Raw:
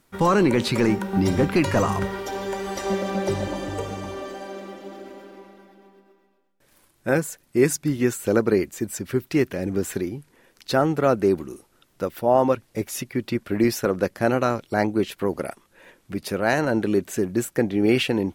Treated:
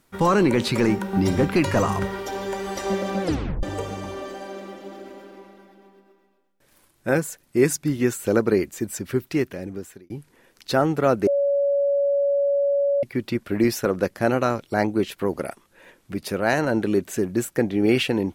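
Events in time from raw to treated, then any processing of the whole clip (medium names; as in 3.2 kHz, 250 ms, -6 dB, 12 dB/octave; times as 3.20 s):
3.23 s: tape stop 0.40 s
9.18–10.10 s: fade out
11.27–13.03 s: bleep 564 Hz -17.5 dBFS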